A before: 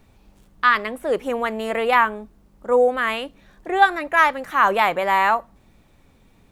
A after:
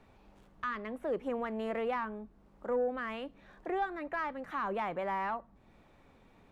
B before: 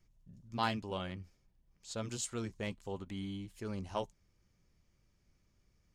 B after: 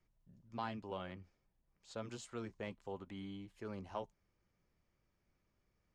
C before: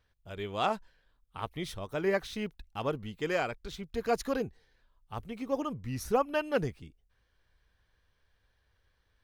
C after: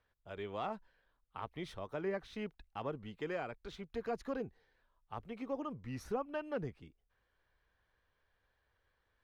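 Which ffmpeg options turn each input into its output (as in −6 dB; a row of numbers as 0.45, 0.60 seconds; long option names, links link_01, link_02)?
-filter_complex "[0:a]acrossover=split=290[link_01][link_02];[link_02]acompressor=threshold=-38dB:ratio=2.5[link_03];[link_01][link_03]amix=inputs=2:normalize=0,asplit=2[link_04][link_05];[link_05]highpass=frequency=720:poles=1,volume=11dB,asoftclip=type=tanh:threshold=-16.5dB[link_06];[link_04][link_06]amix=inputs=2:normalize=0,lowpass=frequency=1100:poles=1,volume=-6dB,volume=-4dB"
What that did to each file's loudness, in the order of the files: −16.5, −6.5, −8.5 LU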